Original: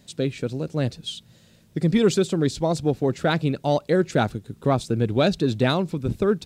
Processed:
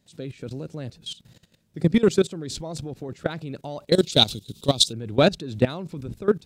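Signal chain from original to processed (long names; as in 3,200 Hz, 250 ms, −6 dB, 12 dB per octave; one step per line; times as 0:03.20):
0:02.67–0:03.09: downward compressor, threshold −22 dBFS, peak gain reduction 6.5 dB
0:03.92–0:04.93: high shelf with overshoot 2,500 Hz +13.5 dB, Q 3
output level in coarse steps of 18 dB
level +3.5 dB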